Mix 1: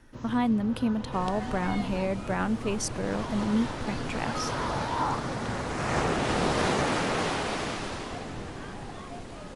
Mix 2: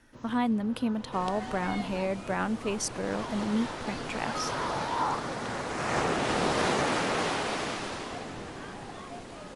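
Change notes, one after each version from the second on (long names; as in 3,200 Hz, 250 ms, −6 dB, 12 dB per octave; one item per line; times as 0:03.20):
first sound −4.5 dB
master: add low-shelf EQ 130 Hz −9.5 dB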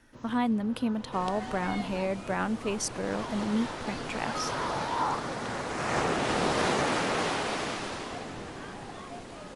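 nothing changed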